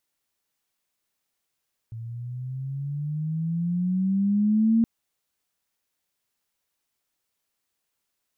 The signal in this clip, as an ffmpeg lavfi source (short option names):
-f lavfi -i "aevalsrc='pow(10,(-16+17*(t/2.92-1))/20)*sin(2*PI*112*2.92/(12.5*log(2)/12)*(exp(12.5*log(2)/12*t/2.92)-1))':d=2.92:s=44100"